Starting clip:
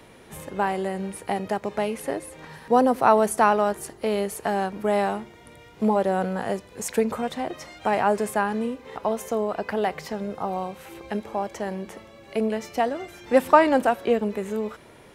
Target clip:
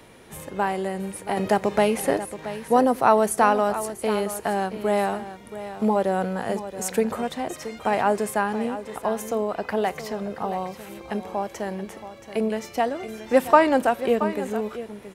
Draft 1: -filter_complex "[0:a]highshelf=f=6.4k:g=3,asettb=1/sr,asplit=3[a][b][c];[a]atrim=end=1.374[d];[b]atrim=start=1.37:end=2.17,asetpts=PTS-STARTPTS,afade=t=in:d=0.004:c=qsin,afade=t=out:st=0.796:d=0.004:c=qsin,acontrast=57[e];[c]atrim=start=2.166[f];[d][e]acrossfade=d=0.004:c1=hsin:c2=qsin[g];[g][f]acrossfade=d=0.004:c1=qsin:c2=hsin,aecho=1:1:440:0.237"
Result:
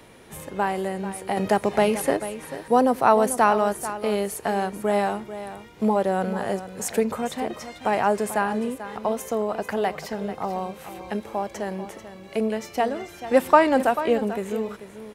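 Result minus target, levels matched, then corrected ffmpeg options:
echo 0.236 s early
-filter_complex "[0:a]highshelf=f=6.4k:g=3,asettb=1/sr,asplit=3[a][b][c];[a]atrim=end=1.374[d];[b]atrim=start=1.37:end=2.17,asetpts=PTS-STARTPTS,afade=t=in:d=0.004:c=qsin,afade=t=out:st=0.796:d=0.004:c=qsin,acontrast=57[e];[c]atrim=start=2.166[f];[d][e]acrossfade=d=0.004:c1=hsin:c2=qsin[g];[g][f]acrossfade=d=0.004:c1=qsin:c2=hsin,aecho=1:1:676:0.237"

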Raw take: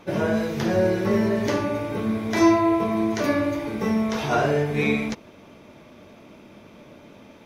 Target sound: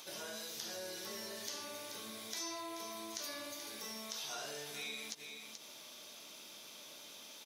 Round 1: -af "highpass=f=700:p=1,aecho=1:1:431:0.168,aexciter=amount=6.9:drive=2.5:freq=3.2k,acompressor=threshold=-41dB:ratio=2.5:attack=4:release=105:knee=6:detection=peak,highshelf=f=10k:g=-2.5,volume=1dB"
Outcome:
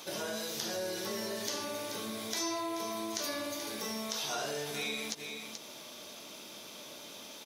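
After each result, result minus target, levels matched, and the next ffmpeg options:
compressor: peak gain reduction -5.5 dB; 500 Hz band +3.5 dB
-af "highpass=f=700:p=1,aecho=1:1:431:0.168,aexciter=amount=6.9:drive=2.5:freq=3.2k,acompressor=threshold=-52dB:ratio=2.5:attack=4:release=105:knee=6:detection=peak,highshelf=f=10k:g=-2.5,volume=1dB"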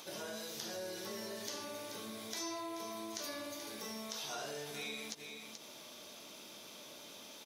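500 Hz band +3.5 dB
-af "highpass=f=1.6k:p=1,aecho=1:1:431:0.168,aexciter=amount=6.9:drive=2.5:freq=3.2k,acompressor=threshold=-52dB:ratio=2.5:attack=4:release=105:knee=6:detection=peak,highshelf=f=10k:g=-2.5,volume=1dB"

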